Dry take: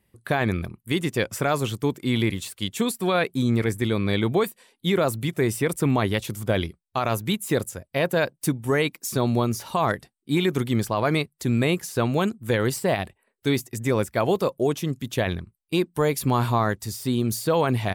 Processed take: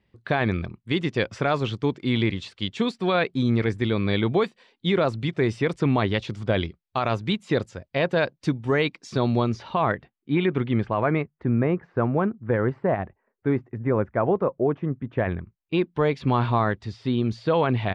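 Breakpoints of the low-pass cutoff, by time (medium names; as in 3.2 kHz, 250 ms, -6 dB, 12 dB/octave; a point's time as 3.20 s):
low-pass 24 dB/octave
9.45 s 4.8 kHz
9.91 s 2.9 kHz
10.74 s 2.9 kHz
11.50 s 1.7 kHz
15.06 s 1.7 kHz
15.91 s 3.7 kHz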